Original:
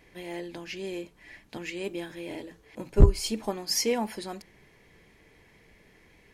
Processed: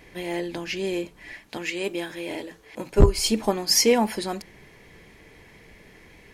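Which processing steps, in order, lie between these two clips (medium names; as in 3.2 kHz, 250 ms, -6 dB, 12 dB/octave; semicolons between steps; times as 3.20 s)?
1.33–3.18 s: bass shelf 270 Hz -8.5 dB; trim +8 dB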